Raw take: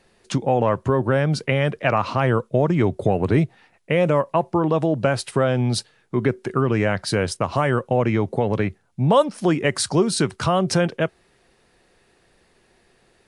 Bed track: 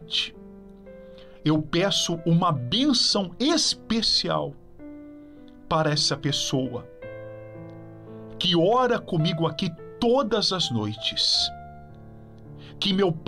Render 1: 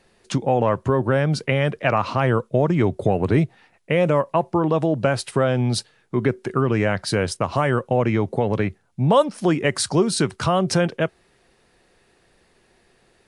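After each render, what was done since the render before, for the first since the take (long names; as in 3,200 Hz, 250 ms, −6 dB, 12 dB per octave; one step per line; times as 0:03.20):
no processing that can be heard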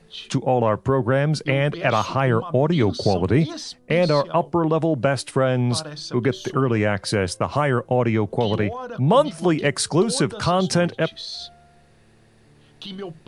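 mix in bed track −11.5 dB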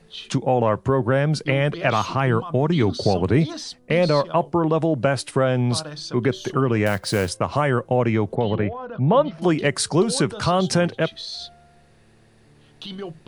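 0:01.91–0:02.92: parametric band 570 Hz −8.5 dB 0.26 octaves
0:06.86–0:07.29: floating-point word with a short mantissa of 2 bits
0:08.35–0:09.42: high-frequency loss of the air 310 metres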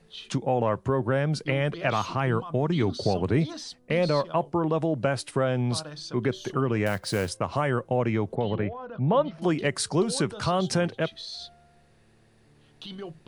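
level −5.5 dB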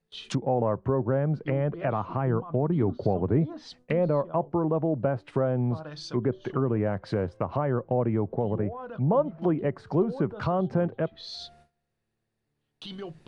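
treble cut that deepens with the level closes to 950 Hz, closed at −24 dBFS
noise gate with hold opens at −45 dBFS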